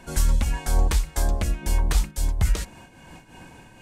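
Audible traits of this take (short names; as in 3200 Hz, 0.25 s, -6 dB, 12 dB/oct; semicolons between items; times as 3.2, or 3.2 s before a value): noise-modulated level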